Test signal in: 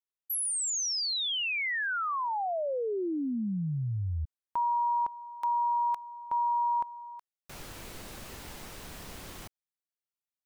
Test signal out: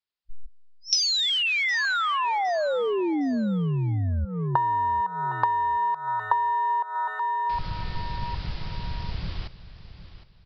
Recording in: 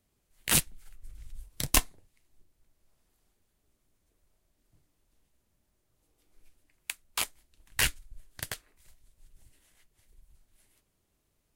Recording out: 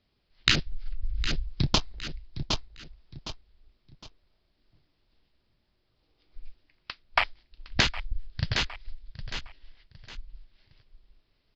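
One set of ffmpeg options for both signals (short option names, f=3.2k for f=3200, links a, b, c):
-filter_complex "[0:a]highshelf=f=3.9k:g=12,aeval=exprs='2.37*(cos(1*acos(clip(val(0)/2.37,-1,1)))-cos(1*PI/2))+0.0944*(cos(8*acos(clip(val(0)/2.37,-1,1)))-cos(8*PI/2))':c=same,aresample=11025,aeval=exprs='0.631*sin(PI/2*6.31*val(0)/0.631)':c=same,aresample=44100,afwtdn=0.178,asplit=2[a][b];[b]aecho=0:1:761|1522|2283:0.2|0.0619|0.0192[c];[a][c]amix=inputs=2:normalize=0,acompressor=threshold=-23dB:ratio=8:attack=37:release=255:knee=1:detection=peak,volume=-1.5dB"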